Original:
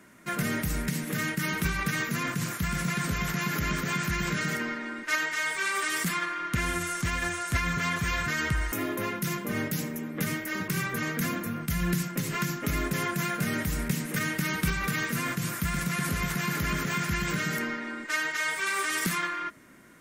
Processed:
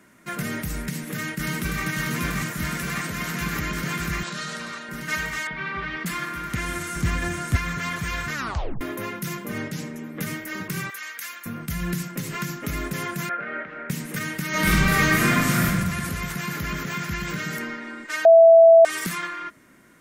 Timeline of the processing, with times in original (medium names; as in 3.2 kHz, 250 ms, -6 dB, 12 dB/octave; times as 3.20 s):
0.80–1.83 s: echo throw 590 ms, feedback 85%, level -1.5 dB
2.67–3.41 s: high-pass 150 Hz 6 dB/octave
4.23–4.89 s: cabinet simulation 240–9100 Hz, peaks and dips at 290 Hz -9 dB, 420 Hz -6 dB, 2.1 kHz -8 dB, 4 kHz +7 dB
5.47–6.06 s: Bessel low-pass 2.5 kHz, order 6
6.96–7.56 s: bass shelf 480 Hz +8 dB
8.34 s: tape stop 0.47 s
9.58–10.04 s: low-pass 8 kHz
10.90–11.46 s: high-pass 1.5 kHz
13.29–13.90 s: cabinet simulation 430–2300 Hz, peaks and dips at 550 Hz +7 dB, 1 kHz -5 dB, 1.4 kHz +8 dB
14.49–15.65 s: reverb throw, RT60 1.3 s, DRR -10.5 dB
16.54–17.48 s: peaking EQ 9 kHz -12.5 dB 0.22 oct
18.25–18.85 s: bleep 661 Hz -7.5 dBFS